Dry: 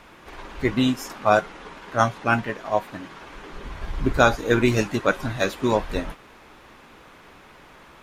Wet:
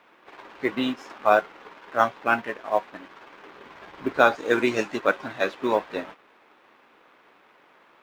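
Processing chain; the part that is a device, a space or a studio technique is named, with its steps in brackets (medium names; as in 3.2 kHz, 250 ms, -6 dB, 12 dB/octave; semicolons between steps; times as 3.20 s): phone line with mismatched companding (band-pass 310–3300 Hz; companding laws mixed up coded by A); 4.35–5.00 s: peaking EQ 7.3 kHz +7.5 dB 0.91 oct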